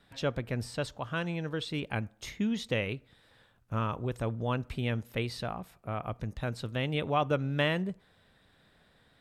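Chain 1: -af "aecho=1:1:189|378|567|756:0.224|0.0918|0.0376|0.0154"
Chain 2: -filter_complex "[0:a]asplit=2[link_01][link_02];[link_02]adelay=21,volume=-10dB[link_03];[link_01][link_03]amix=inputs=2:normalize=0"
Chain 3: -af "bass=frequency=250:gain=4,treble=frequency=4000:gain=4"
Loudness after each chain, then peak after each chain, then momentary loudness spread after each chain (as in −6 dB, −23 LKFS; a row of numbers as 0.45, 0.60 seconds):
−33.5, −33.0, −31.5 LKFS; −15.0, −14.5, −14.0 dBFS; 10, 9, 8 LU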